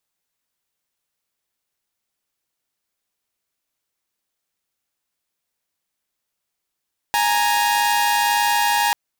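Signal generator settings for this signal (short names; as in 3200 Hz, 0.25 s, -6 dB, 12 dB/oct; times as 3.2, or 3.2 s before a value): chord G#5/A#5 saw, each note -16.5 dBFS 1.79 s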